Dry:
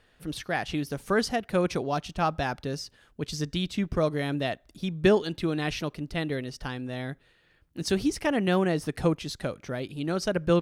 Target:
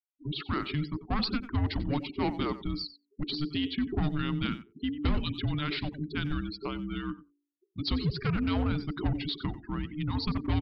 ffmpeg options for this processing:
ffmpeg -i in.wav -filter_complex "[0:a]afftfilt=real='re*gte(hypot(re,im),0.0126)':imag='im*gte(hypot(re,im),0.0126)':win_size=1024:overlap=0.75,bandreject=frequency=54.38:width_type=h:width=4,bandreject=frequency=108.76:width_type=h:width=4,bandreject=frequency=163.14:width_type=h:width=4,bandreject=frequency=217.52:width_type=h:width=4,asplit=2[link_01][link_02];[link_02]aecho=0:1:93:0.133[link_03];[link_01][link_03]amix=inputs=2:normalize=0,acontrast=60,aexciter=amount=2:drive=4.1:freq=4000,aresample=11025,asoftclip=type=tanh:threshold=-16.5dB,aresample=44100,asplit=2[link_04][link_05];[link_05]adelay=90,highpass=300,lowpass=3400,asoftclip=type=hard:threshold=-21dB,volume=-22dB[link_06];[link_04][link_06]amix=inputs=2:normalize=0,afreqshift=-450,volume=-6dB" out.wav

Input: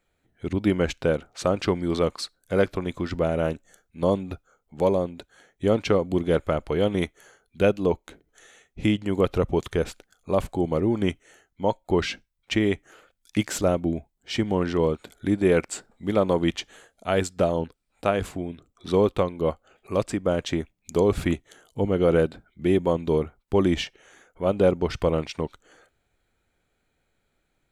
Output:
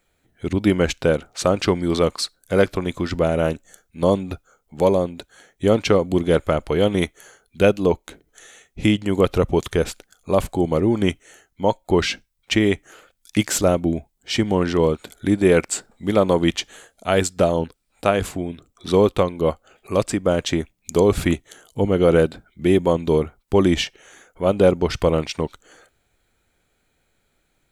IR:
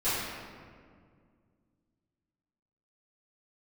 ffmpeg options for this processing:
-af "highshelf=frequency=4300:gain=6,volume=4.5dB"

